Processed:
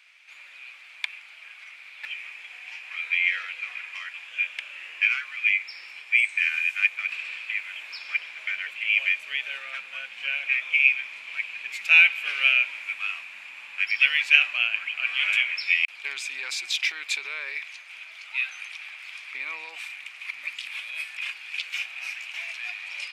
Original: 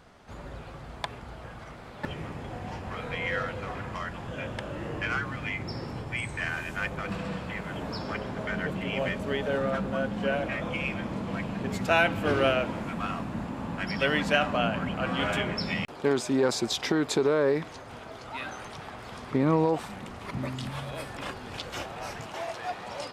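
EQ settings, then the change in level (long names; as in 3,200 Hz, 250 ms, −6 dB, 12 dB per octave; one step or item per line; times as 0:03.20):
high-pass with resonance 2,400 Hz, resonance Q 8.4
−1.0 dB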